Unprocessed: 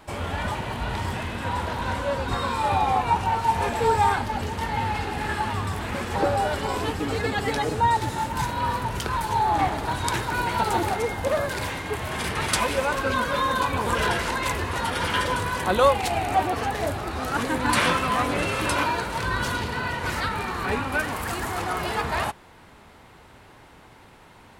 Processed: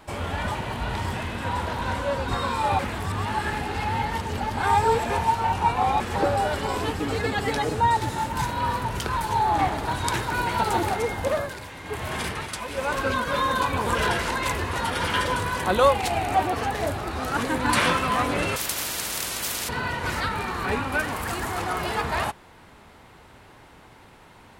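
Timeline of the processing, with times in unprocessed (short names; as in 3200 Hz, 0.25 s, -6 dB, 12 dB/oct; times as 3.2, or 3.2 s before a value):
2.79–6 reverse
11.22–13.27 tremolo 1.1 Hz, depth 70%
18.56–19.69 spectral compressor 10:1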